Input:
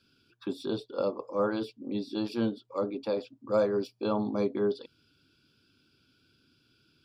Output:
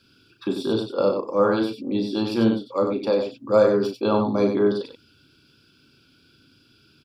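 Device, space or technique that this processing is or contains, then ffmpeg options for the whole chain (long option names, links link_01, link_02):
slapback doubling: -filter_complex "[0:a]asplit=3[link_01][link_02][link_03];[link_02]adelay=36,volume=-7dB[link_04];[link_03]adelay=94,volume=-6.5dB[link_05];[link_01][link_04][link_05]amix=inputs=3:normalize=0,volume=8dB"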